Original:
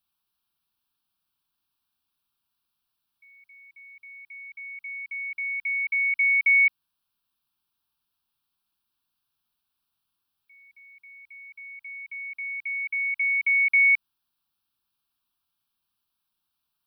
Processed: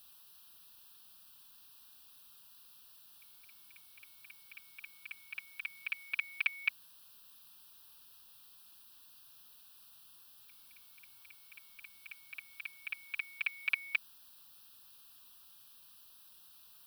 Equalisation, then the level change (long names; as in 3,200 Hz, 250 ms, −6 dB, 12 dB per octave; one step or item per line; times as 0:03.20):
Butterworth band-reject 2,200 Hz, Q 6.3
high-shelf EQ 2,300 Hz +8.5 dB
notch filter 2,200 Hz, Q 15
+14.0 dB